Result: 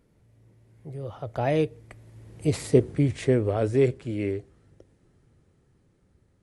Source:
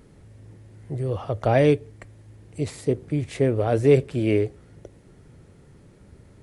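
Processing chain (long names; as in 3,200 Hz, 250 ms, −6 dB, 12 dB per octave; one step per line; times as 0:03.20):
source passing by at 0:02.72, 19 m/s, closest 7.3 metres
level +4.5 dB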